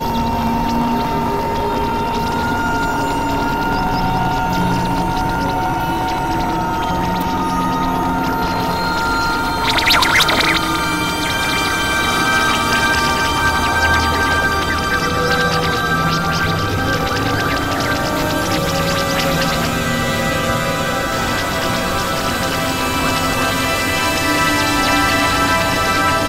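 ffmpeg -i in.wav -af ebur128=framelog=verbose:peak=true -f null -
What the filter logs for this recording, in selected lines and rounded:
Integrated loudness:
  I:         -16.2 LUFS
  Threshold: -26.2 LUFS
Loudness range:
  LRA:         3.6 LU
  Threshold: -36.2 LUFS
  LRA low:   -18.0 LUFS
  LRA high:  -14.4 LUFS
True peak:
  Peak:       -2.1 dBFS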